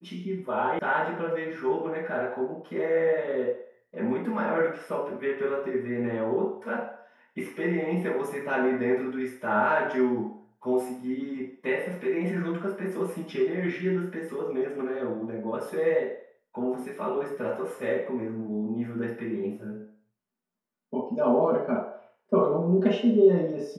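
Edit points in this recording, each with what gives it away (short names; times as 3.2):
0.79 sound cut off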